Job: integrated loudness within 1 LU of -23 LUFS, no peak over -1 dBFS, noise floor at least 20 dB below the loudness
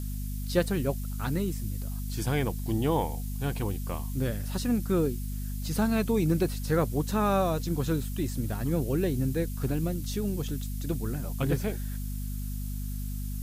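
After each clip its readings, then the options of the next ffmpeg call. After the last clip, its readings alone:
hum 50 Hz; harmonics up to 250 Hz; hum level -31 dBFS; noise floor -34 dBFS; noise floor target -50 dBFS; loudness -30.0 LUFS; peak -11.0 dBFS; loudness target -23.0 LUFS
-> -af "bandreject=f=50:t=h:w=4,bandreject=f=100:t=h:w=4,bandreject=f=150:t=h:w=4,bandreject=f=200:t=h:w=4,bandreject=f=250:t=h:w=4"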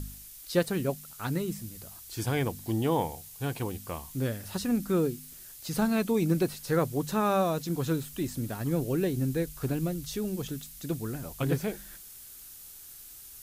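hum none; noise floor -48 dBFS; noise floor target -51 dBFS
-> -af "afftdn=nr=6:nf=-48"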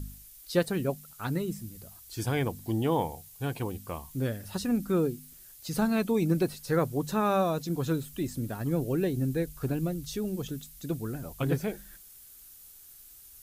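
noise floor -52 dBFS; loudness -30.5 LUFS; peak -12.5 dBFS; loudness target -23.0 LUFS
-> -af "volume=7.5dB"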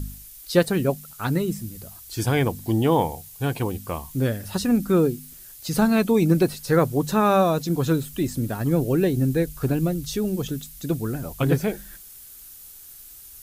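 loudness -23.0 LUFS; peak -5.0 dBFS; noise floor -44 dBFS

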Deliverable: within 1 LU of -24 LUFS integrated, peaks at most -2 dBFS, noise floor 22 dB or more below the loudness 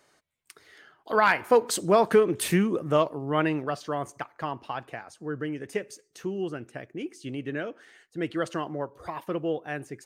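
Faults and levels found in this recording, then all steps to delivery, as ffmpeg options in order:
loudness -27.5 LUFS; peak -10.0 dBFS; loudness target -24.0 LUFS
-> -af "volume=3.5dB"

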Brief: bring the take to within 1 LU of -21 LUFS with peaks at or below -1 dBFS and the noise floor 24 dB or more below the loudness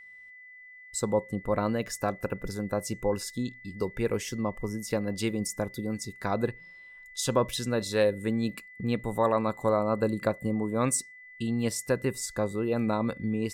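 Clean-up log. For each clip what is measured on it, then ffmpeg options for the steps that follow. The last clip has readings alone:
steady tone 2000 Hz; tone level -47 dBFS; loudness -30.0 LUFS; peak -11.5 dBFS; loudness target -21.0 LUFS
-> -af "bandreject=f=2k:w=30"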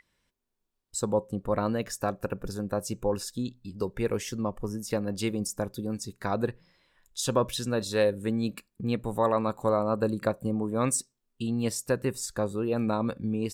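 steady tone none; loudness -30.0 LUFS; peak -11.0 dBFS; loudness target -21.0 LUFS
-> -af "volume=9dB"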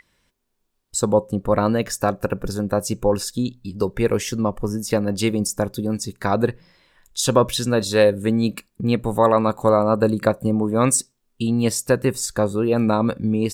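loudness -21.0 LUFS; peak -2.0 dBFS; noise floor -71 dBFS

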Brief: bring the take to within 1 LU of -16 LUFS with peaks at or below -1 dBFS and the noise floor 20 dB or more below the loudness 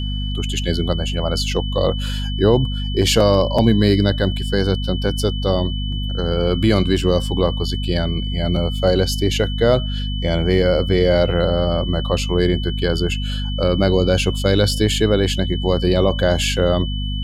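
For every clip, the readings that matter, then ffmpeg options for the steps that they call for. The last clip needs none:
hum 50 Hz; harmonics up to 250 Hz; hum level -21 dBFS; steady tone 3000 Hz; tone level -30 dBFS; loudness -18.5 LUFS; peak -2.0 dBFS; loudness target -16.0 LUFS
-> -af "bandreject=f=50:t=h:w=4,bandreject=f=100:t=h:w=4,bandreject=f=150:t=h:w=4,bandreject=f=200:t=h:w=4,bandreject=f=250:t=h:w=4"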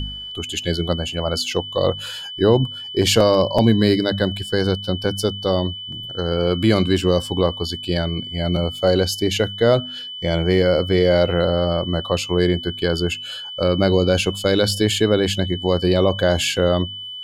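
hum none; steady tone 3000 Hz; tone level -30 dBFS
-> -af "bandreject=f=3k:w=30"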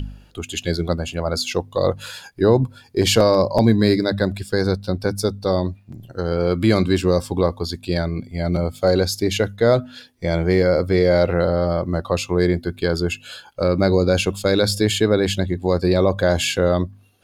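steady tone none; loudness -20.0 LUFS; peak -3.0 dBFS; loudness target -16.0 LUFS
-> -af "volume=4dB,alimiter=limit=-1dB:level=0:latency=1"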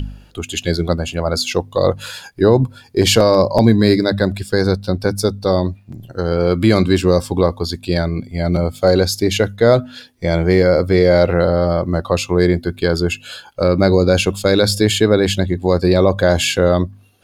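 loudness -16.0 LUFS; peak -1.0 dBFS; noise floor -46 dBFS

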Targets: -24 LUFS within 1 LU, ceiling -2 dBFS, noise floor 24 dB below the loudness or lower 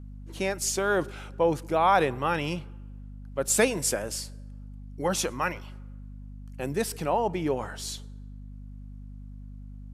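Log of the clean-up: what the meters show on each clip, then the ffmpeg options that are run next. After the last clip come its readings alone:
hum 50 Hz; harmonics up to 250 Hz; hum level -39 dBFS; loudness -27.5 LUFS; peak -9.5 dBFS; loudness target -24.0 LUFS
-> -af "bandreject=f=50:t=h:w=6,bandreject=f=100:t=h:w=6,bandreject=f=150:t=h:w=6,bandreject=f=200:t=h:w=6,bandreject=f=250:t=h:w=6"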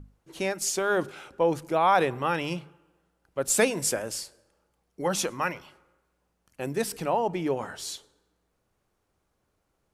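hum none; loudness -27.5 LUFS; peak -9.5 dBFS; loudness target -24.0 LUFS
-> -af "volume=3.5dB"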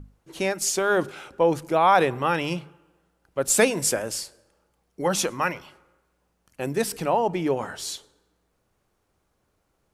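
loudness -24.0 LUFS; peak -6.0 dBFS; noise floor -72 dBFS

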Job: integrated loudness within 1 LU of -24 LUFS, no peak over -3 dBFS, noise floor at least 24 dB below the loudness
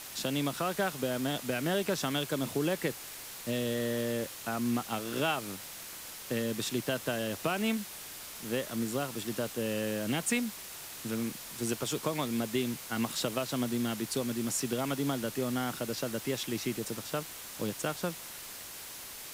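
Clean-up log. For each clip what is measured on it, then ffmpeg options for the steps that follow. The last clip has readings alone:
noise floor -45 dBFS; noise floor target -58 dBFS; loudness -33.5 LUFS; peak -17.0 dBFS; loudness target -24.0 LUFS
-> -af "afftdn=nr=13:nf=-45"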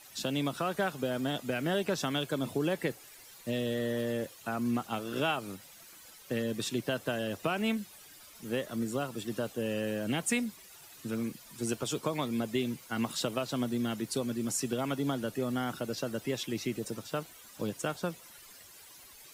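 noise floor -54 dBFS; noise floor target -58 dBFS
-> -af "afftdn=nr=6:nf=-54"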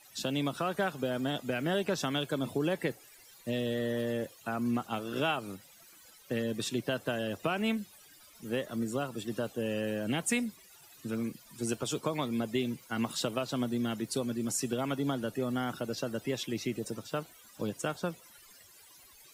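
noise floor -57 dBFS; noise floor target -58 dBFS
-> -af "afftdn=nr=6:nf=-57"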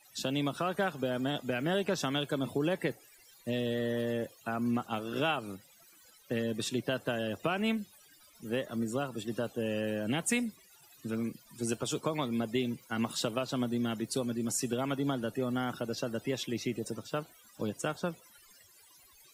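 noise floor -60 dBFS; loudness -34.0 LUFS; peak -17.5 dBFS; loudness target -24.0 LUFS
-> -af "volume=10dB"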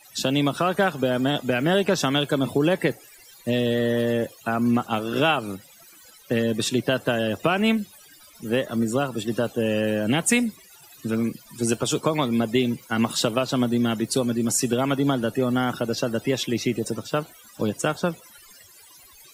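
loudness -24.0 LUFS; peak -7.5 dBFS; noise floor -50 dBFS

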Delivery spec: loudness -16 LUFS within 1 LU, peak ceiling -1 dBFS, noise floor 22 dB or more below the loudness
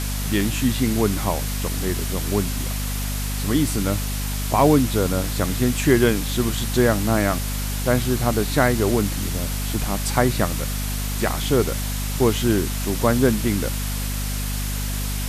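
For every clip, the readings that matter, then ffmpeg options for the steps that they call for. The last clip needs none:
hum 50 Hz; harmonics up to 250 Hz; hum level -24 dBFS; noise floor -25 dBFS; noise floor target -44 dBFS; loudness -22.0 LUFS; peak -3.5 dBFS; loudness target -16.0 LUFS
-> -af "bandreject=f=50:t=h:w=4,bandreject=f=100:t=h:w=4,bandreject=f=150:t=h:w=4,bandreject=f=200:t=h:w=4,bandreject=f=250:t=h:w=4"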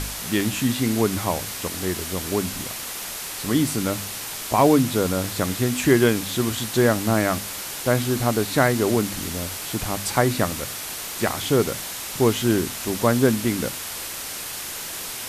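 hum none; noise floor -33 dBFS; noise floor target -45 dBFS
-> -af "afftdn=nr=12:nf=-33"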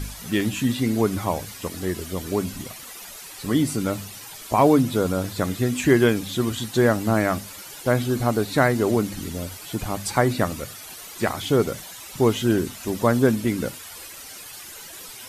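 noise floor -40 dBFS; noise floor target -45 dBFS
-> -af "afftdn=nr=6:nf=-40"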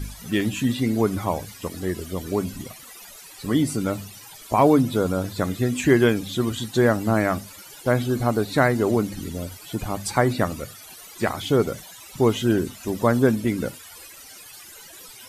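noise floor -44 dBFS; noise floor target -45 dBFS
-> -af "afftdn=nr=6:nf=-44"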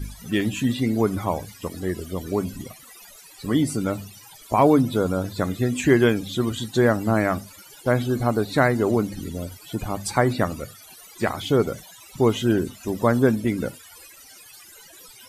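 noise floor -47 dBFS; loudness -23.0 LUFS; peak -4.0 dBFS; loudness target -16.0 LUFS
-> -af "volume=7dB,alimiter=limit=-1dB:level=0:latency=1"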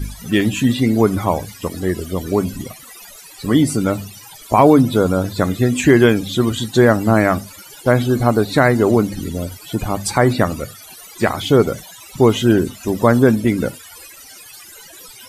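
loudness -16.5 LUFS; peak -1.0 dBFS; noise floor -40 dBFS

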